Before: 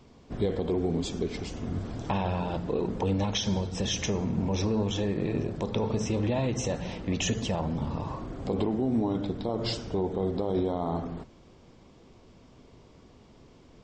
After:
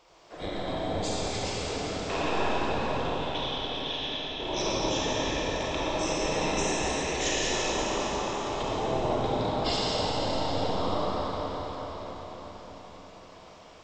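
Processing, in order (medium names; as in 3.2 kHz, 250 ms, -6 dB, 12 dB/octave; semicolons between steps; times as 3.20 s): spectral gate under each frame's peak -10 dB weak; 2.97–4.40 s: four-pole ladder low-pass 3.6 kHz, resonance 80%; reverberation RT60 5.7 s, pre-delay 5 ms, DRR -8 dB; trim +1.5 dB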